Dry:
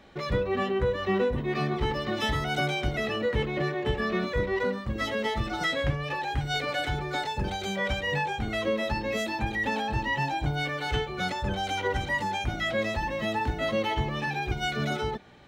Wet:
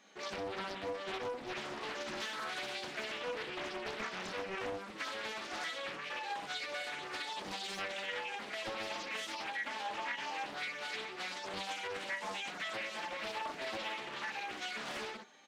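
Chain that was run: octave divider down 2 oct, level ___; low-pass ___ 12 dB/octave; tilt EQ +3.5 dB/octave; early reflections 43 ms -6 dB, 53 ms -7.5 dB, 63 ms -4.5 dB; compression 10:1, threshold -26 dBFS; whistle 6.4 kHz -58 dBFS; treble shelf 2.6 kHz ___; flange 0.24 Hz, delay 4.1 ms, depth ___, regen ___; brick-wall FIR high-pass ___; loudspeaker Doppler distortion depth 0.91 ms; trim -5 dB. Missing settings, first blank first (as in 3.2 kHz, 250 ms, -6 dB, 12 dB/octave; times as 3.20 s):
-3 dB, 10 kHz, -4 dB, 6.1 ms, -48%, 160 Hz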